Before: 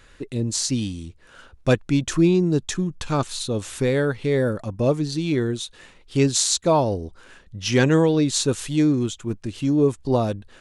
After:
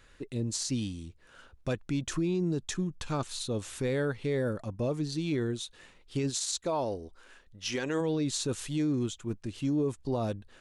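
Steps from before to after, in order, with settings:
0:06.29–0:08.00: parametric band 120 Hz −6 dB → −14 dB 1.9 octaves
brickwall limiter −14.5 dBFS, peak gain reduction 11.5 dB
level −7.5 dB

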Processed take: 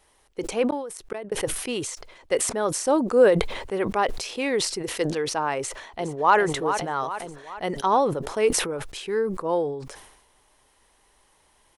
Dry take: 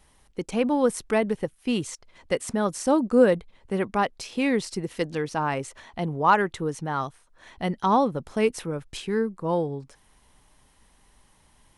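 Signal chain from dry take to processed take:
low shelf with overshoot 290 Hz −8 dB, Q 1.5
0:00.66–0:01.32: gate with flip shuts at −19 dBFS, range −37 dB
0:05.58–0:06.36: delay throw 410 ms, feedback 50%, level −8.5 dB
level that may fall only so fast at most 60 dB per second

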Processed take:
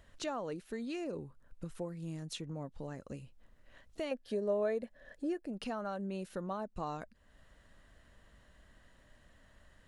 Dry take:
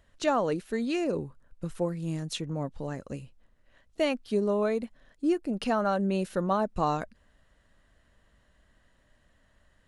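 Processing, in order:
downward compressor 2 to 1, threshold −51 dBFS, peak gain reduction 16 dB
0:04.11–0:05.46: hollow resonant body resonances 560/1,700 Hz, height 13 dB, ringing for 20 ms
level +2.5 dB

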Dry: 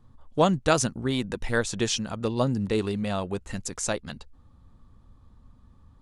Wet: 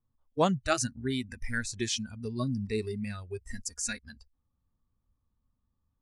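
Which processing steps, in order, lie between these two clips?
noise reduction from a noise print of the clip's start 20 dB
0:03.46–0:03.99: comb filter 4.2 ms, depth 77%
level −4 dB

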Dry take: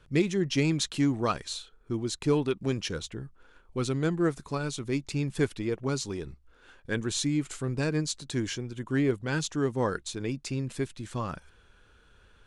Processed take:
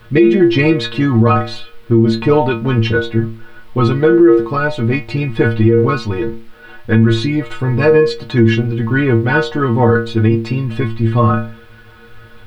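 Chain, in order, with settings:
stiff-string resonator 110 Hz, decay 0.47 s, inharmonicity 0.008
background noise blue −67 dBFS
high-frequency loss of the air 430 metres
boost into a limiter +34.5 dB
level −1 dB

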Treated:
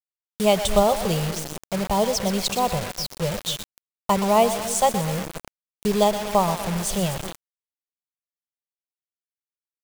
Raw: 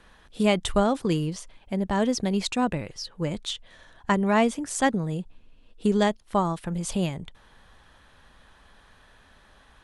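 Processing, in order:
phaser with its sweep stopped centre 690 Hz, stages 4
echo with a time of its own for lows and highs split 450 Hz, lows 263 ms, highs 122 ms, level −11 dB
bit-depth reduction 6 bits, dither none
level +6.5 dB

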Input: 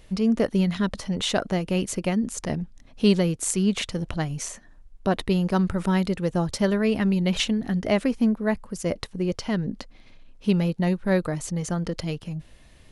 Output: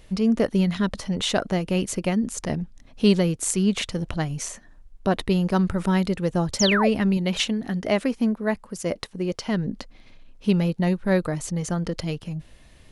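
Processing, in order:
0:06.59–0:06.89: sound drawn into the spectrogram fall 480–7,400 Hz −24 dBFS
0:07.17–0:09.49: low-shelf EQ 130 Hz −9 dB
level +1 dB

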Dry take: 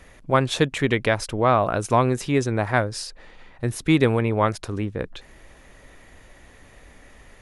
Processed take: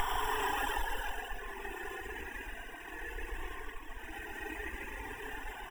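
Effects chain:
noise gate with hold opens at −38 dBFS
decimation without filtering 20×
extreme stretch with random phases 29×, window 0.05 s, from 0:05.15
parametric band 1,800 Hz +12.5 dB 1.5 octaves
single-tap delay 180 ms −3.5 dB
reverb reduction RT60 1.8 s
on a send at −12 dB: convolution reverb RT60 0.40 s, pre-delay 4 ms
on the sum: tempo change 1.3×
parametric band 120 Hz −9.5 dB 2.8 octaves
phaser with its sweep stopped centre 880 Hz, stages 8
downward compressor 4 to 1, threshold −41 dBFS, peak gain reduction 6 dB
level +11 dB

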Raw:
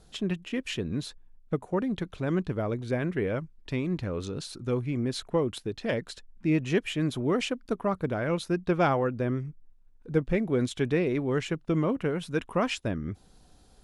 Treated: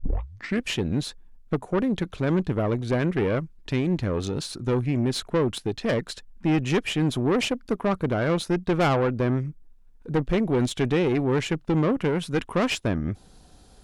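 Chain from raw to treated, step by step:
turntable start at the beginning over 0.64 s
tube saturation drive 25 dB, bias 0.5
level +8 dB

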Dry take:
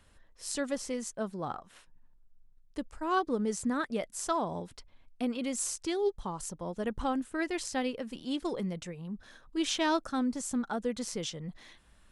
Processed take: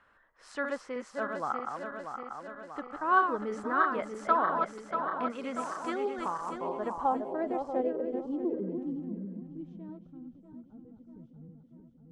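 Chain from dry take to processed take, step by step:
feedback delay that plays each chunk backwards 319 ms, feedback 77%, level −5 dB
low-pass filter sweep 1,400 Hz → 120 Hz, 0:06.34–0:10.33
RIAA equalisation recording

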